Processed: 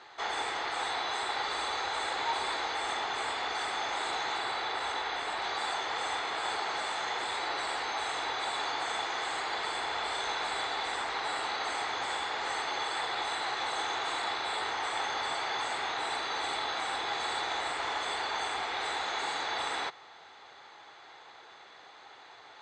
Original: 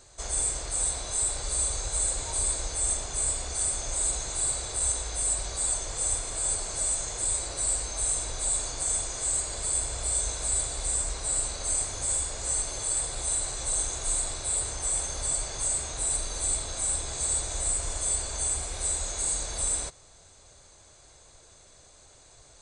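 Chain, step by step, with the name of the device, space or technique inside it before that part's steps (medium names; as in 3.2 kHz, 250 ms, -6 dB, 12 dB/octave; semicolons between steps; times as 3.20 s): 4.38–5.42 s: distance through air 51 m; phone earpiece (cabinet simulation 370–3800 Hz, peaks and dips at 580 Hz -9 dB, 840 Hz +10 dB, 1.3 kHz +6 dB, 1.9 kHz +8 dB, 3.3 kHz +4 dB); trim +5.5 dB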